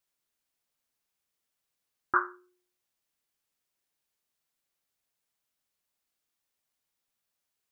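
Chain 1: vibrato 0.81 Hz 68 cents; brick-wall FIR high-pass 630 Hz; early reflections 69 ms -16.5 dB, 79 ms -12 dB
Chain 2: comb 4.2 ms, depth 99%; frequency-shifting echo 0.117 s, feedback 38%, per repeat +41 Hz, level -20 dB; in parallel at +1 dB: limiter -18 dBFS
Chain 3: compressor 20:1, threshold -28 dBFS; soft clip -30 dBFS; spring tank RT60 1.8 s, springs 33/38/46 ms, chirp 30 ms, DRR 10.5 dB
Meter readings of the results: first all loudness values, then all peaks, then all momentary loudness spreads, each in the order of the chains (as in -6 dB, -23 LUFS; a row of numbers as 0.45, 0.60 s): -31.0, -24.0, -43.0 LUFS; -10.5, -4.5, -29.0 dBFS; 5, 15, 19 LU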